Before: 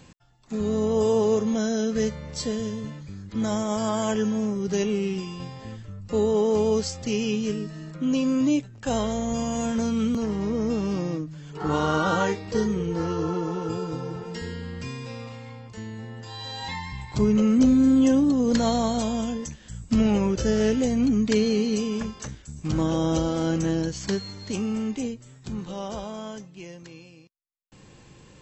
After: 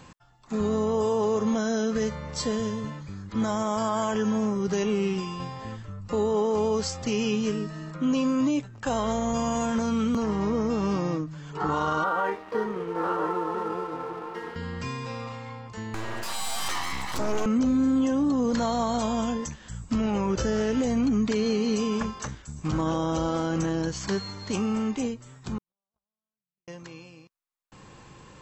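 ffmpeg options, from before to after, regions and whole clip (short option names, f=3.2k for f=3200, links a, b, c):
-filter_complex "[0:a]asettb=1/sr,asplit=3[a][b][c];[a]atrim=end=12.044[d];[b]atrim=start=12.04:end=14.56,asetpts=PTS-STARTPTS,afade=t=in:d=0.004:c=qsin,afade=t=out:st=2.516:d=0.004:c=qsin,highpass=330,lowpass=2.1k,aeval=exprs='sgn(val(0))*max(abs(val(0))-0.00398,0)':c=same,aecho=1:1:993:0.237,atrim=end_sample=111132[e];[c]atrim=start=14.556[f];[d][e]acrossfade=d=0.004:c1=hsin:c2=qsin[g];[g][f]acrossfade=d=0.004:c1=qsin:c2=hsin,asettb=1/sr,asplit=3[h][i][j];[h]atrim=end=15.944[k];[i]atrim=start=15.94:end=17.46,asetpts=PTS-STARTPTS,afade=t=in:d=0.004:c=qsin,afade=t=out:st=1.516:d=0.004:c=qsin,highshelf=f=3k:g=11,aeval=exprs='abs(val(0))':c=same,acompressor=mode=upward:threshold=-24dB:ratio=2.5:attack=3.2:release=140:knee=2.83:detection=peak[l];[j]atrim=start=17.456[m];[k][l]acrossfade=d=0.004:c1=hsin:c2=qsin[n];[n][m]acrossfade=d=0.004:c1=qsin:c2=hsin,asettb=1/sr,asplit=3[o][p][q];[o]atrim=end=25.584[r];[p]atrim=start=25.58:end=26.68,asetpts=PTS-STARTPTS,afade=t=in:d=0.004:c=qsin,afade=t=out:st=1.096:d=0.004:c=qsin,asubboost=boost=10.5:cutoff=220,acompressor=threshold=-36dB:ratio=4:attack=3.2:release=140:knee=1:detection=peak,agate=range=-60dB:threshold=-33dB:ratio=16:release=100:detection=peak[s];[q]atrim=start=26.676[t];[r][s]acrossfade=d=0.004:c1=hsin:c2=qsin[u];[u][t]acrossfade=d=0.004:c1=qsin:c2=hsin,equalizer=f=1.1k:w=1.2:g=8.5,alimiter=limit=-17.5dB:level=0:latency=1:release=55"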